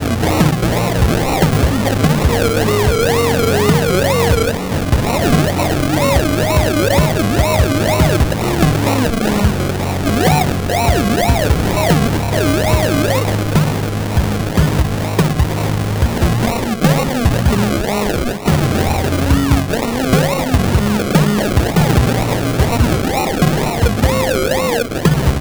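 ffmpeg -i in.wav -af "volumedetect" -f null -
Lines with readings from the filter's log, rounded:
mean_volume: -13.9 dB
max_volume: -3.3 dB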